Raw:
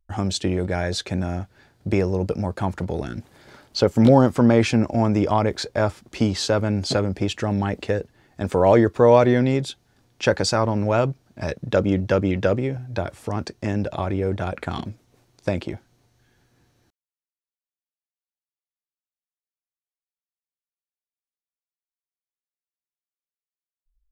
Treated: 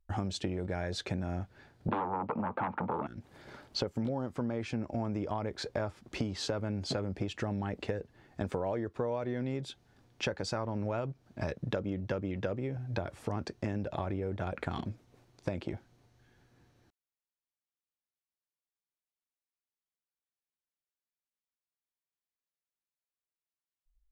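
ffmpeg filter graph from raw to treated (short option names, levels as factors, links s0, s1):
-filter_complex "[0:a]asettb=1/sr,asplit=3[s0][s1][s2];[s0]atrim=end=1.884[s3];[s1]atrim=start=1.88:end=3.07,asetpts=PTS-STARTPTS,afade=t=in:d=0.004:c=qsin,afade=t=out:st=1.186:d=0.004:c=qsin,aeval=exprs='0.422*sin(PI/2*4.47*val(0)/0.422)':c=same,highpass=200,equalizer=f=230:t=q:w=4:g=6,equalizer=f=380:t=q:w=4:g=-5,equalizer=f=880:t=q:w=4:g=10,equalizer=f=1200:t=q:w=4:g=6,equalizer=f=1800:t=q:w=4:g=-5,lowpass=f=2500:w=0.5412,lowpass=f=2500:w=1.3066[s4];[s2]atrim=start=3.066[s5];[s3][s4]acrossfade=d=0.004:c1=hsin:c2=qsin[s6];[s6][s5]acrossfade=d=0.004:c1=qsin:c2=hsin,highshelf=f=4600:g=-8,acompressor=threshold=0.0398:ratio=12,volume=0.75"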